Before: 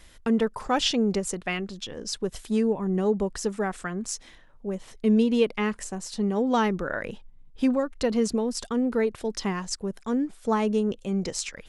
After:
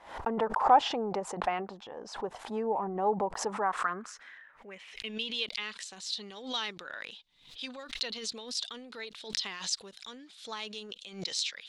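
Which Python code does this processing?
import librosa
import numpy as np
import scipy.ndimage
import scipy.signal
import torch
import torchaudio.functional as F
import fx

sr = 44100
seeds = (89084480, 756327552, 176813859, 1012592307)

y = fx.filter_sweep_bandpass(x, sr, from_hz=840.0, to_hz=3800.0, start_s=3.44, end_s=5.43, q=4.1)
y = fx.transient(y, sr, attack_db=1, sustain_db=6)
y = fx.pre_swell(y, sr, db_per_s=110.0)
y = F.gain(torch.from_numpy(y), 8.5).numpy()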